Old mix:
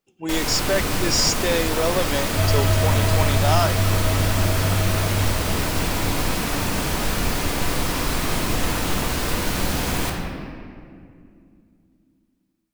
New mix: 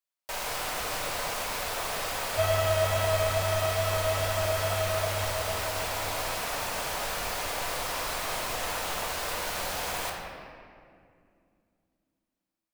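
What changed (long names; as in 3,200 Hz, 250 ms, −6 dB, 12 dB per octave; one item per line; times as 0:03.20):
speech: muted
first sound −6.5 dB
master: add low shelf with overshoot 410 Hz −12 dB, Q 1.5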